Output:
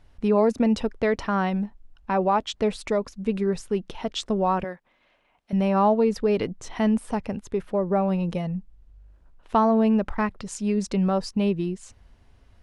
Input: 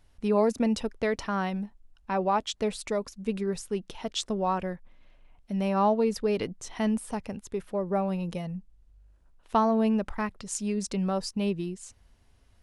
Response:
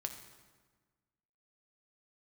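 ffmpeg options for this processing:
-filter_complex "[0:a]asettb=1/sr,asplit=3[link_01][link_02][link_03];[link_01]atrim=end=4.644[link_04];[link_02]atrim=start=4.64:end=5.53,asetpts=PTS-STARTPTS,afade=type=in:duration=0.004:curve=qsin,afade=type=out:start_time=0.886:duration=0.004:curve=qsin,highpass=frequency=700:poles=1[link_05];[link_03]atrim=start=5.526[link_06];[link_04][link_05]acrossfade=duration=0.004:curve1=hsin:curve2=qsin[link_07];[link_07][link_06]acrossfade=duration=0.004:curve1=qsin:curve2=hsin,asplit=2[link_08][link_09];[link_09]alimiter=limit=-23dB:level=0:latency=1:release=223,volume=-2dB[link_10];[link_08][link_10]amix=inputs=2:normalize=0,lowpass=frequency=2900:poles=1,volume=1.5dB"

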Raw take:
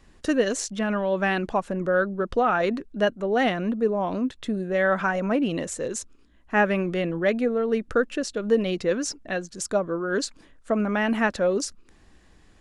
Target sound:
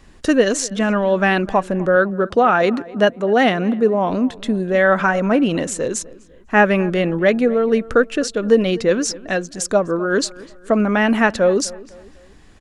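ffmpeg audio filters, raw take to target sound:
ffmpeg -i in.wav -filter_complex "[0:a]asettb=1/sr,asplit=3[link_01][link_02][link_03];[link_01]atrim=end=1.964[link_04];[link_02]atrim=start=1.96:end=4.1,asetpts=PTS-STARTPTS,afade=type=in:duration=0.004:curve=qsin,afade=type=out:start_time=2.136:duration=0.004:curve=qsin,highpass=86[link_05];[link_03]atrim=start=4.096[link_06];[link_04][link_05]acrossfade=duration=0.004:curve1=hsin:curve2=qsin[link_07];[link_07][link_06]acrossfade=duration=0.004:curve1=qsin:curve2=hsin,asplit=2[link_08][link_09];[link_09]adelay=251,lowpass=frequency=2300:poles=1,volume=-20dB,asplit=2[link_10][link_11];[link_11]adelay=251,lowpass=frequency=2300:poles=1,volume=0.42,asplit=2[link_12][link_13];[link_13]adelay=251,lowpass=frequency=2300:poles=1,volume=0.42[link_14];[link_08][link_10][link_12][link_14]amix=inputs=4:normalize=0,volume=7.5dB" out.wav

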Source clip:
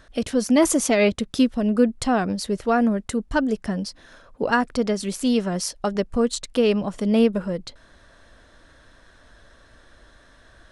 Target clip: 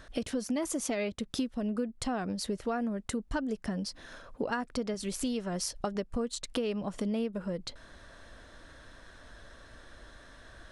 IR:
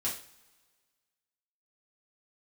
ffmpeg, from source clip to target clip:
-filter_complex "[0:a]asettb=1/sr,asplit=3[link_01][link_02][link_03];[link_01]atrim=end=4.944[link_04];[link_02]atrim=start=4.94:end=5.81,asetpts=PTS-STARTPTS,afade=type=in:duration=0.004:curve=qsin,afade=type=out:start_time=0.866:duration=0.004:curve=qsin,lowshelf=frequency=130:width_type=q:width=1.5:gain=6.5[link_05];[link_03]atrim=start=5.806[link_06];[link_04][link_05]acrossfade=duration=0.004:curve1=hsin:curve2=qsin[link_07];[link_07][link_06]acrossfade=duration=0.004:curve1=qsin:curve2=hsin,acompressor=threshold=-31dB:ratio=5"

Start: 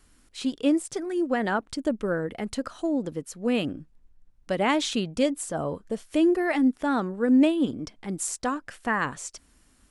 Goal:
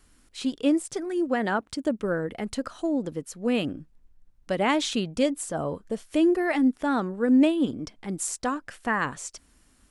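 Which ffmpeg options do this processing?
ffmpeg -i in.wav -filter_complex "[0:a]asettb=1/sr,asplit=3[link_01][link_02][link_03];[link_01]atrim=end=1.284[link_04];[link_02]atrim=start=1.28:end=2.04,asetpts=PTS-STARTPTS,afade=type=in:duration=0.004:curve=qsin,afade=type=out:start_time=0.756:duration=0.004:curve=qsin,highpass=50[link_05];[link_03]atrim=start=2.036[link_06];[link_04][link_05]acrossfade=duration=0.004:curve1=hsin:curve2=qsin[link_07];[link_07][link_06]acrossfade=duration=0.004:curve1=qsin:curve2=hsin" out.wav

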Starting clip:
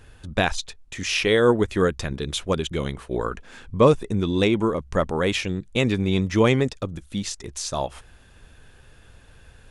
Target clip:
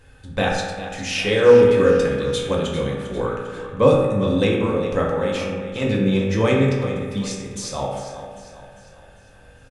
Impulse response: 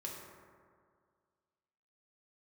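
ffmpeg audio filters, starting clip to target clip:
-filter_complex "[0:a]asettb=1/sr,asplit=3[link_01][link_02][link_03];[link_01]atrim=end=5.074[link_04];[link_02]atrim=start=5.07:end=5.82,asetpts=PTS-STARTPTS,afade=type=in:duration=0.004:curve=qsin,afade=type=out:start_time=0.746:duration=0.004:curve=qsin,acompressor=threshold=-26dB:ratio=3[link_05];[link_03]atrim=start=5.816[link_06];[link_04][link_05]acrossfade=duration=0.004:curve1=hsin:curve2=qsin[link_07];[link_07][link_06]acrossfade=duration=0.004:curve1=qsin:curve2=hsin,aecho=1:1:399|798|1197|1596|1995:0.237|0.111|0.0524|0.0246|0.0116[link_08];[1:a]atrim=start_sample=2205,asetrate=61740,aresample=44100[link_09];[link_08][link_09]afir=irnorm=-1:irlink=0,volume=5dB"

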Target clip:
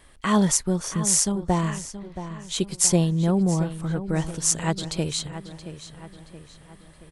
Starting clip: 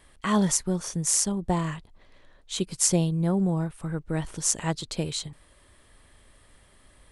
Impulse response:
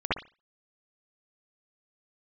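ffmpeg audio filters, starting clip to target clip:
-filter_complex "[0:a]asplit=2[link_01][link_02];[link_02]adelay=675,lowpass=frequency=4500:poles=1,volume=-12dB,asplit=2[link_03][link_04];[link_04]adelay=675,lowpass=frequency=4500:poles=1,volume=0.5,asplit=2[link_05][link_06];[link_06]adelay=675,lowpass=frequency=4500:poles=1,volume=0.5,asplit=2[link_07][link_08];[link_08]adelay=675,lowpass=frequency=4500:poles=1,volume=0.5,asplit=2[link_09][link_10];[link_10]adelay=675,lowpass=frequency=4500:poles=1,volume=0.5[link_11];[link_01][link_03][link_05][link_07][link_09][link_11]amix=inputs=6:normalize=0,volume=3dB"

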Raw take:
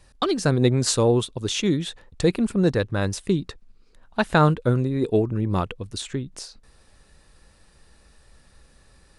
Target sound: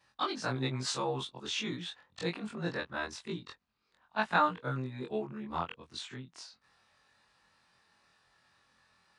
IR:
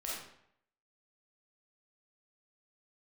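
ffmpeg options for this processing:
-af "afftfilt=real='re':imag='-im':win_size=2048:overlap=0.75,highpass=130,lowpass=5000,lowshelf=frequency=660:width_type=q:width=1.5:gain=-8,volume=-2.5dB"

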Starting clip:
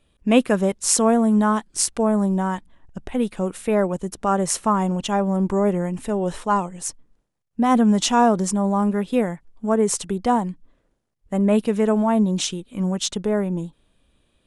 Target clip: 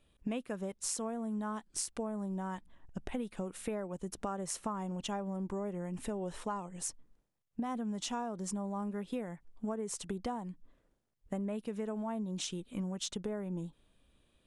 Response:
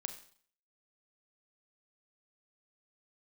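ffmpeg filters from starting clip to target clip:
-af "acompressor=threshold=-28dB:ratio=12,volume=-6dB"

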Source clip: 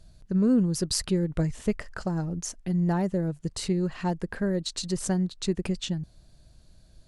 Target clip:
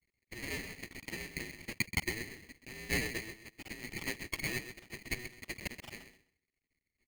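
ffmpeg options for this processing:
ffmpeg -i in.wav -filter_complex "[0:a]lowpass=frequency=1800:width=0.5412,lowpass=frequency=1800:width=1.3066,agate=range=-33dB:threshold=-43dB:ratio=3:detection=peak,aecho=1:1:7.2:0.85,flanger=delay=1.9:depth=8.2:regen=-56:speed=0.53:shape=triangular,asplit=2[link_01][link_02];[link_02]asoftclip=type=tanh:threshold=-31dB,volume=-11dB[link_03];[link_01][link_03]amix=inputs=2:normalize=0,asetrate=29433,aresample=44100,atempo=1.49831,aeval=exprs='max(val(0),0)':channel_layout=same,asuperpass=centerf=1300:order=12:qfactor=0.81,aecho=1:1:129|258|387:0.299|0.0597|0.0119,aeval=exprs='val(0)*sgn(sin(2*PI*1100*n/s))':channel_layout=same,volume=11.5dB" out.wav

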